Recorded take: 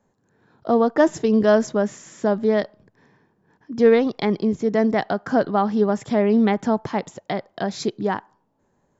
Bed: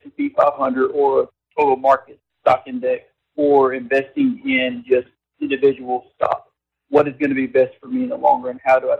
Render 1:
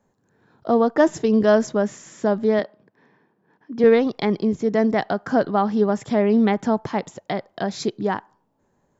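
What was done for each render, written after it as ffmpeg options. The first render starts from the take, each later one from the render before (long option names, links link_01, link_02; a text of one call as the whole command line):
ffmpeg -i in.wav -filter_complex "[0:a]asettb=1/sr,asplit=3[link_01][link_02][link_03];[link_01]atrim=end=2.594[link_04];[link_02]atrim=start=2.59:end=3.84,asetpts=PTS-STARTPTS,afade=type=in:duration=0.004:curve=qsin,afade=type=out:start_time=1.246:duration=0.004:curve=qsin,highpass=180,lowpass=4000[link_05];[link_03]atrim=start=3.836[link_06];[link_04][link_05]acrossfade=duration=0.004:curve1=hsin:curve2=qsin[link_07];[link_07][link_06]acrossfade=duration=0.004:curve1=qsin:curve2=hsin" out.wav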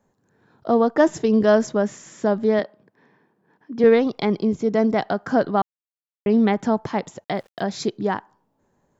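ffmpeg -i in.wav -filter_complex "[0:a]asettb=1/sr,asplit=3[link_01][link_02][link_03];[link_01]atrim=end=4.044[link_04];[link_02]atrim=start=4.04:end=5.05,asetpts=PTS-STARTPTS,afade=type=in:duration=0.004:curve=qsin,afade=type=out:start_time=1.006:duration=0.004:curve=qsin,bandreject=frequency=1800:width=8.9[link_05];[link_03]atrim=start=5.046[link_06];[link_04][link_05]acrossfade=duration=0.004:curve1=hsin:curve2=qsin[link_07];[link_07][link_06]acrossfade=duration=0.004:curve1=qsin:curve2=hsin,asettb=1/sr,asplit=3[link_08][link_09][link_10];[link_08]atrim=end=7.244[link_11];[link_09]atrim=start=7.24:end=7.65,asetpts=PTS-STARTPTS,afade=type=in:duration=0.004:curve=qsin,afade=type=out:start_time=0.406:duration=0.004:curve=qsin,aeval=exprs='val(0)*gte(abs(val(0)),0.00299)':channel_layout=same[link_12];[link_10]atrim=start=7.646[link_13];[link_11][link_12]acrossfade=duration=0.004:curve1=hsin:curve2=qsin[link_14];[link_14][link_13]acrossfade=duration=0.004:curve1=qsin:curve2=hsin,asplit=3[link_15][link_16][link_17];[link_15]atrim=end=5.62,asetpts=PTS-STARTPTS,afade=type=out:start_time=5.616:duration=0.004:curve=hsin[link_18];[link_16]atrim=start=5.62:end=6.26,asetpts=PTS-STARTPTS,volume=0[link_19];[link_17]atrim=start=6.26,asetpts=PTS-STARTPTS,afade=type=in:duration=0.004:curve=hsin[link_20];[link_18][link_19][link_20]concat=n=3:v=0:a=1" out.wav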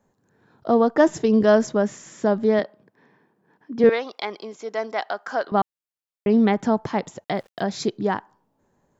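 ffmpeg -i in.wav -filter_complex "[0:a]asettb=1/sr,asplit=3[link_01][link_02][link_03];[link_01]atrim=end=3.894[link_04];[link_02]atrim=start=3.89:end=5.52,asetpts=PTS-STARTPTS,afade=type=in:duration=0.004:curve=qsin,afade=type=out:start_time=1.626:duration=0.004:curve=qsin,highpass=730[link_05];[link_03]atrim=start=5.516[link_06];[link_04][link_05]acrossfade=duration=0.004:curve1=hsin:curve2=qsin[link_07];[link_07][link_06]acrossfade=duration=0.004:curve1=qsin:curve2=hsin" out.wav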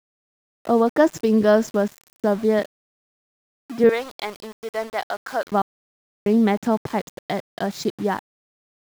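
ffmpeg -i in.wav -af "aeval=exprs='val(0)*gte(abs(val(0)),0.0188)':channel_layout=same" out.wav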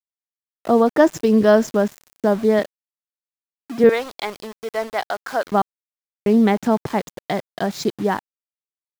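ffmpeg -i in.wav -af "volume=2.5dB" out.wav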